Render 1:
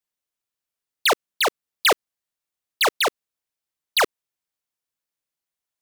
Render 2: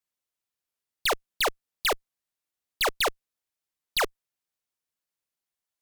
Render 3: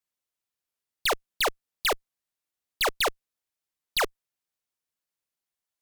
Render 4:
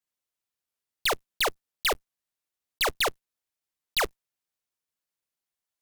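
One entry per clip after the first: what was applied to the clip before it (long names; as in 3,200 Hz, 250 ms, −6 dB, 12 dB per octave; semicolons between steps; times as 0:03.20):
leveller curve on the samples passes 1; asymmetric clip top −27 dBFS, bottom −20 dBFS
no processing that can be heard
one scale factor per block 3 bits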